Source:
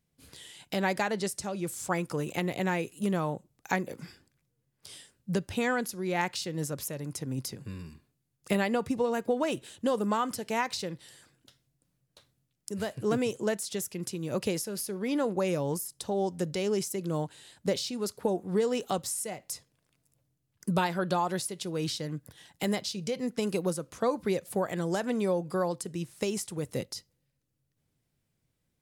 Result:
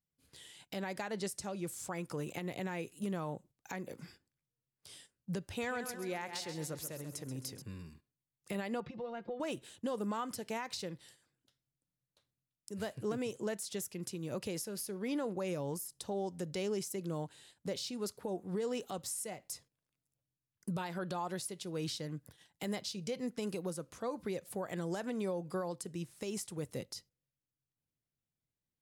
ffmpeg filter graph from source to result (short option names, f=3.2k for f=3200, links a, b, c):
-filter_complex "[0:a]asettb=1/sr,asplit=3[a][b][c];[a]atrim=end=5.454[d];[b]atrim=start=5.45:end=7.62,asetpts=PTS-STARTPTS,afade=t=in:d=0.004:c=qsin,afade=t=out:st=2.166:d=0.004:c=qsin,equalizer=f=200:w=1.3:g=-5,aecho=1:1:133|266|399|532|665:0.299|0.146|0.0717|0.0351|0.0172,atrim=end_sample=95697[e];[c]atrim=start=7.616[f];[d][e]acrossfade=d=0.004:c1=hsin:c2=qsin[g];[g][f]acrossfade=d=0.004:c1=qsin:c2=hsin,asettb=1/sr,asplit=3[h][i][j];[h]atrim=end=8.804[k];[i]atrim=start=8.8:end=9.4,asetpts=PTS-STARTPTS,afade=t=in:d=0.004:c=qsin,afade=t=out:st=0.596:d=0.004:c=qsin,lowpass=f=4.1k:w=0.5412,lowpass=f=4.1k:w=1.3066,acompressor=threshold=-37dB:ratio=2.5:attack=3.2:release=140:knee=1:detection=peak,aecho=1:1:5.7:0.73,atrim=end_sample=26460[l];[j]atrim=start=9.396[m];[k][l]acrossfade=d=0.004:c1=hsin:c2=qsin[n];[n][m]acrossfade=d=0.004:c1=qsin:c2=hsin,agate=range=-10dB:threshold=-52dB:ratio=16:detection=peak,alimiter=limit=-22.5dB:level=0:latency=1:release=120,volume=-6dB"